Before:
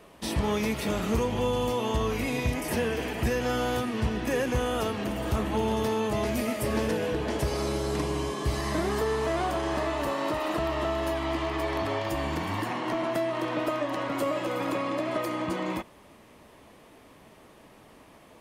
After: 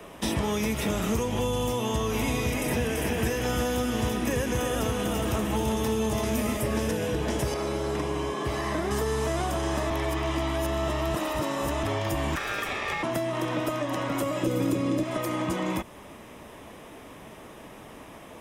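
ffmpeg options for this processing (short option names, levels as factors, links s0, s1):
-filter_complex "[0:a]asettb=1/sr,asplit=3[s0][s1][s2];[s0]atrim=end=1.804[s3];[s1]atrim=start=1.8:end=6.57,asetpts=PTS-STARTPTS,afade=t=in:d=0.004:c=qsin,afade=t=out:st=4.766:d=0.004:c=qsin,aecho=1:1:336:0.631,atrim=end_sample=210357[s4];[s2]atrim=start=6.566[s5];[s3][s4]acrossfade=d=0.004:c1=hsin:c2=qsin[s6];[s6][s5]acrossfade=d=0.004:c1=qsin:c2=hsin,asettb=1/sr,asplit=3[s7][s8][s9];[s7]atrim=end=7.544[s10];[s8]atrim=start=7.54:end=8.91,asetpts=PTS-STARTPTS,afade=t=in:d=0.004:c=qsin,afade=t=out:st=1.366:d=0.004:c=qsin,bass=f=250:g=-9,treble=f=4000:g=-11[s11];[s9]atrim=start=8.906[s12];[s10][s11]acrossfade=d=0.004:c1=hsin:c2=qsin[s13];[s13][s12]acrossfade=d=0.004:c1=qsin:c2=hsin,asettb=1/sr,asplit=3[s14][s15][s16];[s14]atrim=end=12.354[s17];[s15]atrim=start=12.35:end=13.03,asetpts=PTS-STARTPTS,afade=t=in:d=0.004:c=qsin,afade=t=out:st=0.676:d=0.004:c=qsin,aeval=exprs='val(0)*sin(2*PI*1500*n/s)':c=same[s18];[s16]atrim=start=13.026[s19];[s17][s18]acrossfade=d=0.004:c1=hsin:c2=qsin[s20];[s20][s19]acrossfade=d=0.004:c1=qsin:c2=hsin,asettb=1/sr,asplit=3[s21][s22][s23];[s21]atrim=end=14.434[s24];[s22]atrim=start=14.43:end=15.03,asetpts=PTS-STARTPTS,afade=t=in:d=0.004:c=qsin,afade=t=out:st=0.596:d=0.004:c=qsin,lowshelf=f=550:t=q:w=1.5:g=9[s25];[s23]atrim=start=15.026[s26];[s24][s25]acrossfade=d=0.004:c1=hsin:c2=qsin[s27];[s27][s26]acrossfade=d=0.004:c1=qsin:c2=hsin,asplit=3[s28][s29][s30];[s28]atrim=end=9.902[s31];[s29]atrim=start=9.898:end=11.832,asetpts=PTS-STARTPTS,areverse[s32];[s30]atrim=start=11.828[s33];[s31][s32]acrossfade=d=0.004:c1=hsin:c2=hsin[s34];[s34][s33]acrossfade=d=0.004:c1=hsin:c2=hsin,bandreject=f=4400:w=6,acrossover=split=90|200|4400[s35][s36][s37][s38];[s35]acompressor=threshold=0.00708:ratio=4[s39];[s36]acompressor=threshold=0.00794:ratio=4[s40];[s37]acompressor=threshold=0.0141:ratio=4[s41];[s38]acompressor=threshold=0.00562:ratio=4[s42];[s39][s40][s41][s42]amix=inputs=4:normalize=0,volume=2.51"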